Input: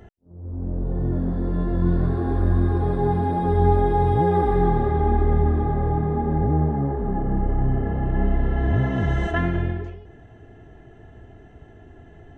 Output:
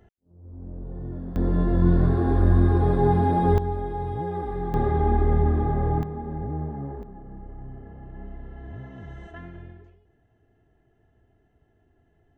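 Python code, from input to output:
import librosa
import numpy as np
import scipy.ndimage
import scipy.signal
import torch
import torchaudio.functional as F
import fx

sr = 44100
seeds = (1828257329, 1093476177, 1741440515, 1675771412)

y = fx.gain(x, sr, db=fx.steps((0.0, -10.5), (1.36, 1.5), (3.58, -10.5), (4.74, -1.5), (6.03, -10.0), (7.03, -18.5)))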